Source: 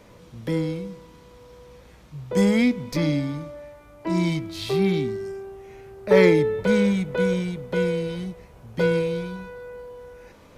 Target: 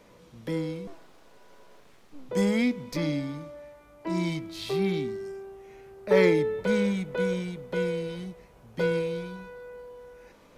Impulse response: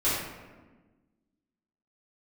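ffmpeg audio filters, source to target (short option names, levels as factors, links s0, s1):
-filter_complex "[0:a]asettb=1/sr,asplit=3[s0][s1][s2];[s0]atrim=end=0.874[s3];[s1]atrim=start=0.87:end=2.29,asetpts=PTS-STARTPTS,afade=t=in:d=0.004:c=qsin,afade=t=out:st=1.416:d=0.004:c=qsin,aeval=exprs='abs(val(0))':c=same[s4];[s2]atrim=start=2.286[s5];[s3][s4]acrossfade=d=0.004:c1=hsin:c2=qsin[s6];[s6][s5]acrossfade=d=0.004:c1=qsin:c2=hsin,equalizer=f=85:t=o:w=1.2:g=-8.5,volume=0.596"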